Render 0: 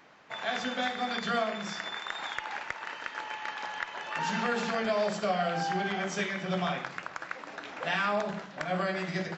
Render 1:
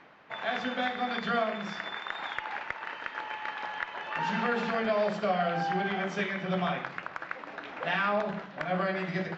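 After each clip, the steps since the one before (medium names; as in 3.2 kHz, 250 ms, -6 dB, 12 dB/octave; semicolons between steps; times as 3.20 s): low-pass 3.3 kHz 12 dB/octave; reverse; upward compressor, threshold -48 dBFS; reverse; trim +1 dB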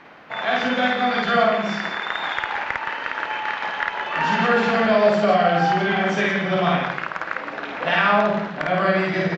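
loudspeakers at several distances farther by 18 m -1 dB, 58 m -7 dB; trim +8 dB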